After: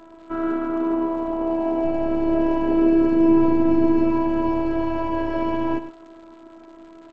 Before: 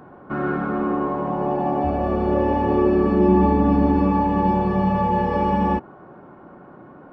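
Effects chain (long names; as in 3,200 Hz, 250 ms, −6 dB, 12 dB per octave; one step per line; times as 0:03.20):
phases set to zero 329 Hz
on a send: single-tap delay 109 ms −12 dB
on the sum: surface crackle 200 per second −41 dBFS
level +1 dB
G.722 64 kbit/s 16,000 Hz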